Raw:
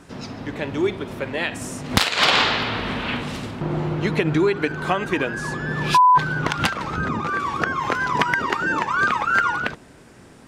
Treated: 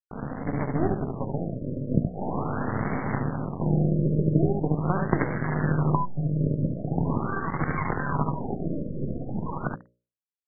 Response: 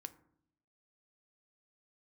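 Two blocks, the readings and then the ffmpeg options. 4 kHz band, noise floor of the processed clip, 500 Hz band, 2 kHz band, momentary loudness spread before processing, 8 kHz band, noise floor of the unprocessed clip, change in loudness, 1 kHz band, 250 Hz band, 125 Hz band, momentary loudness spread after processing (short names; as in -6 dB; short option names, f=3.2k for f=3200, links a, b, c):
under -40 dB, under -85 dBFS, -5.0 dB, -15.5 dB, 12 LU, under -40 dB, -47 dBFS, -6.5 dB, -12.0 dB, 0.0 dB, +3.5 dB, 9 LU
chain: -filter_complex "[0:a]equalizer=f=2.6k:w=0.45:g=-12.5,aecho=1:1:44|72:0.237|0.562,acrossover=split=280|1800[a][b][c];[a]acompressor=threshold=-26dB:ratio=4[d];[b]acompressor=threshold=-34dB:ratio=4[e];[c]acompressor=threshold=-39dB:ratio=4[f];[d][e][f]amix=inputs=3:normalize=0,asplit=2[g][h];[h]highpass=f=720:p=1,volume=14dB,asoftclip=type=tanh:threshold=-12dB[i];[g][i]amix=inputs=2:normalize=0,lowpass=f=1.6k:p=1,volume=-6dB,acrusher=bits=4:dc=4:mix=0:aa=0.000001,asplit=2[j][k];[1:a]atrim=start_sample=2205,asetrate=37044,aresample=44100[l];[k][l]afir=irnorm=-1:irlink=0,volume=4dB[m];[j][m]amix=inputs=2:normalize=0,aeval=exprs='sgn(val(0))*max(abs(val(0))-0.0376,0)':c=same,equalizer=f=150:w=1.1:g=11,bandreject=f=60:t=h:w=6,bandreject=f=120:t=h:w=6,bandreject=f=180:t=h:w=6,bandreject=f=240:t=h:w=6,bandreject=f=300:t=h:w=6,bandreject=f=360:t=h:w=6,bandreject=f=420:t=h:w=6,bandreject=f=480:t=h:w=6,bandreject=f=540:t=h:w=6,bandreject=f=600:t=h:w=6,afftfilt=real='re*lt(b*sr/1024,610*pow(2300/610,0.5+0.5*sin(2*PI*0.42*pts/sr)))':imag='im*lt(b*sr/1024,610*pow(2300/610,0.5+0.5*sin(2*PI*0.42*pts/sr)))':win_size=1024:overlap=0.75"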